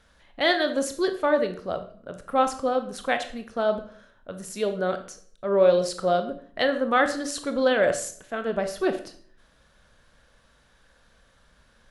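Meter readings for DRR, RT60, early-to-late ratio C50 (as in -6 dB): 7.5 dB, 0.55 s, 11.0 dB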